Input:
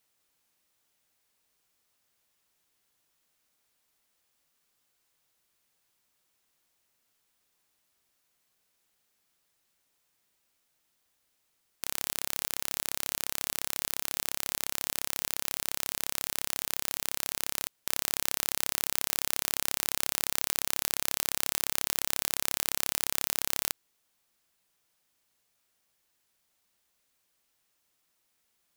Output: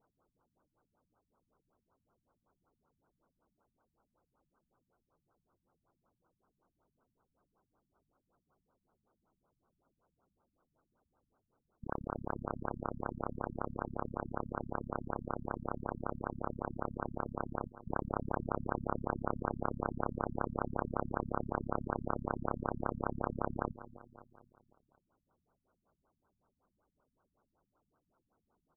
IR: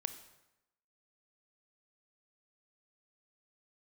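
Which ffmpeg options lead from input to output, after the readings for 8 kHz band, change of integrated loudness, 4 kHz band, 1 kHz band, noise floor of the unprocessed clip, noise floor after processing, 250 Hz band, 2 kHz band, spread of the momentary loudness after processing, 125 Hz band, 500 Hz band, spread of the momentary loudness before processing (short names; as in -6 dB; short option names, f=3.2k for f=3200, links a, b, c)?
under -40 dB, -9.0 dB, under -40 dB, +4.5 dB, -75 dBFS, under -85 dBFS, +9.0 dB, -9.5 dB, 3 LU, +9.5 dB, +7.0 dB, 3 LU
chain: -af "aecho=1:1:254|508|762|1016|1270:0.168|0.0873|0.0454|0.0236|0.0123,afftfilt=real='re*lt(b*sr/1024,230*pow(1600/230,0.5+0.5*sin(2*PI*5.3*pts/sr)))':imag='im*lt(b*sr/1024,230*pow(1600/230,0.5+0.5*sin(2*PI*5.3*pts/sr)))':win_size=1024:overlap=0.75,volume=9.5dB"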